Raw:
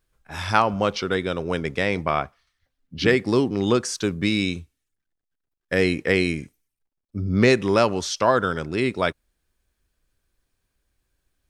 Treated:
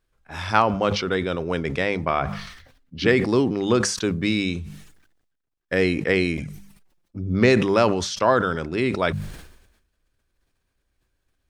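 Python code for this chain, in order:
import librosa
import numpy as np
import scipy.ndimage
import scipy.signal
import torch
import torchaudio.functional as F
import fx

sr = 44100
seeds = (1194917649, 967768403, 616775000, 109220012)

y = fx.high_shelf(x, sr, hz=6600.0, db=-8.0)
y = fx.hum_notches(y, sr, base_hz=50, count=4)
y = fx.env_flanger(y, sr, rest_ms=6.0, full_db=-26.5, at=(6.37, 7.35))
y = fx.sustainer(y, sr, db_per_s=61.0)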